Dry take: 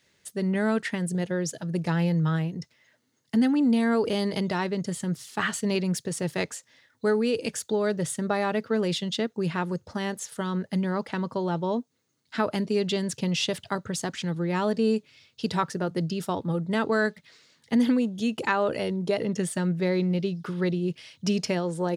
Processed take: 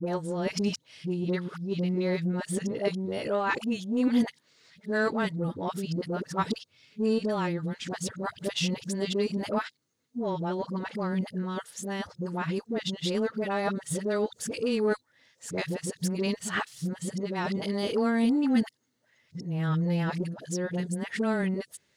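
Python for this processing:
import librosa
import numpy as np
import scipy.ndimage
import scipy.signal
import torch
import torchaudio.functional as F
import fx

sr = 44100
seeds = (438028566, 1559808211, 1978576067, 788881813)

y = x[::-1].copy()
y = fx.dispersion(y, sr, late='highs', ms=63.0, hz=690.0)
y = fx.cheby_harmonics(y, sr, harmonics=(3, 7), levels_db=(-26, -40), full_scale_db=-12.0)
y = y * 10.0 ** (-1.5 / 20.0)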